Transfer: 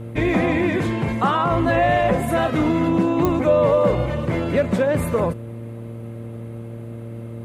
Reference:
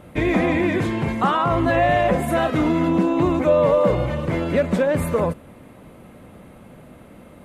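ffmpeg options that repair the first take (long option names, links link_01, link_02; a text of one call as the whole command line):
ffmpeg -i in.wav -af "adeclick=threshold=4,bandreject=frequency=115.2:width_type=h:width=4,bandreject=frequency=230.4:width_type=h:width=4,bandreject=frequency=345.6:width_type=h:width=4,bandreject=frequency=460.8:width_type=h:width=4,bandreject=frequency=576:width_type=h:width=4" out.wav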